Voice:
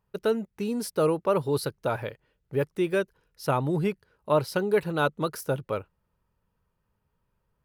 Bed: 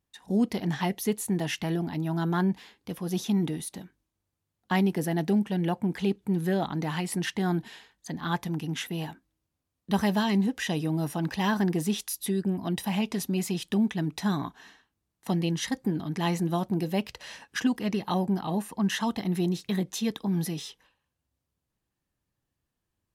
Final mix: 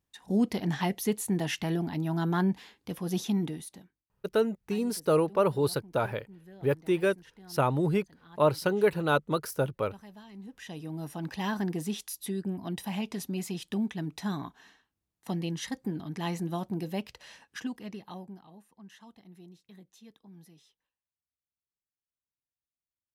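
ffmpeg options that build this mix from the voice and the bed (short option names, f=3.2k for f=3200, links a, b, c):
-filter_complex "[0:a]adelay=4100,volume=-0.5dB[a];[1:a]volume=18dB,afade=t=out:st=3.18:d=0.89:silence=0.0668344,afade=t=in:st=10.33:d=1.05:silence=0.112202,afade=t=out:st=16.92:d=1.59:silence=0.112202[b];[a][b]amix=inputs=2:normalize=0"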